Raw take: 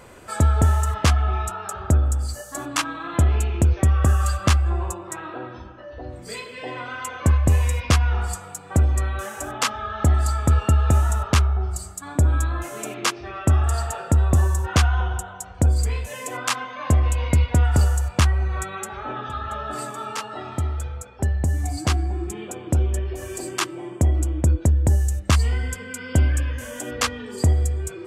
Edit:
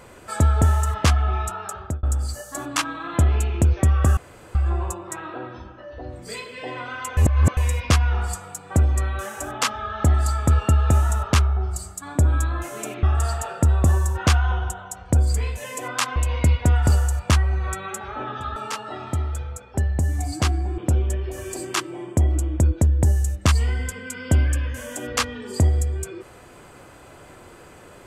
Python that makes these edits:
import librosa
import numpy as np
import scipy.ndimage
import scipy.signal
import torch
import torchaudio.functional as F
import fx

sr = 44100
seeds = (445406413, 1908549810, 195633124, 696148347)

y = fx.edit(x, sr, fx.fade_out_span(start_s=1.54, length_s=0.49, curve='qsin'),
    fx.room_tone_fill(start_s=4.17, length_s=0.38),
    fx.reverse_span(start_s=7.17, length_s=0.4),
    fx.cut(start_s=13.03, length_s=0.49),
    fx.cut(start_s=16.65, length_s=0.4),
    fx.cut(start_s=19.45, length_s=0.56),
    fx.cut(start_s=22.23, length_s=0.39), tone=tone)